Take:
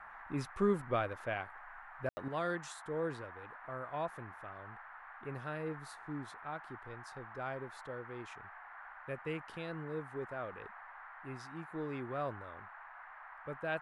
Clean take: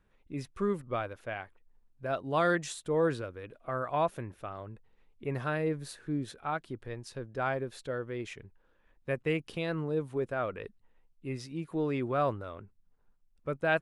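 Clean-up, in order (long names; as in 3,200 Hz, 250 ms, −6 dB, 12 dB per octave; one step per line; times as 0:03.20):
ambience match 0:02.09–0:02.17
noise reduction from a noise print 13 dB
level 0 dB, from 0:02.28 +9.5 dB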